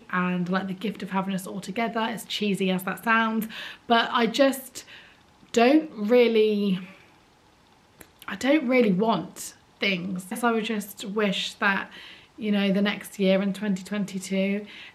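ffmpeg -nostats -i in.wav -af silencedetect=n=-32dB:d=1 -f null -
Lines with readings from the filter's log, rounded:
silence_start: 6.85
silence_end: 8.01 | silence_duration: 1.17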